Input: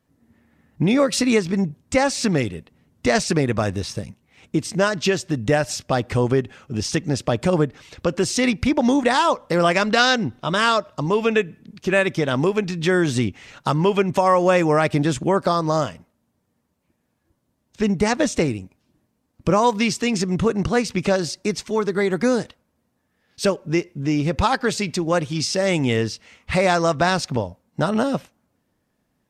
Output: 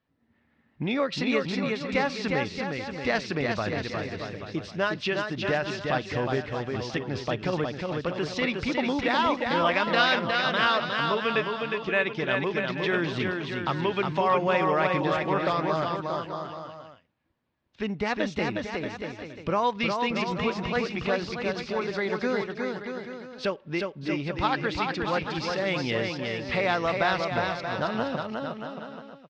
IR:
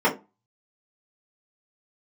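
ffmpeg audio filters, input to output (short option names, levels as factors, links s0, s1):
-filter_complex "[0:a]lowpass=f=4100:w=0.5412,lowpass=f=4100:w=1.3066,tiltshelf=f=650:g=-4,asplit=2[s0][s1];[s1]aecho=0:1:360|630|832.5|984.4|1098:0.631|0.398|0.251|0.158|0.1[s2];[s0][s2]amix=inputs=2:normalize=0,volume=0.398"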